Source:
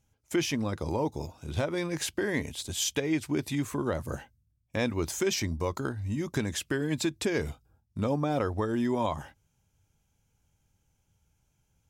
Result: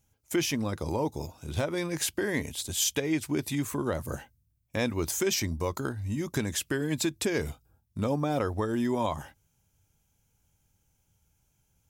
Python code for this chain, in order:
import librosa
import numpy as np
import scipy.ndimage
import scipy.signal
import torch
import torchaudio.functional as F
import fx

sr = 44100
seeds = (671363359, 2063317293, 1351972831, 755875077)

y = fx.high_shelf(x, sr, hz=9600.0, db=11.0)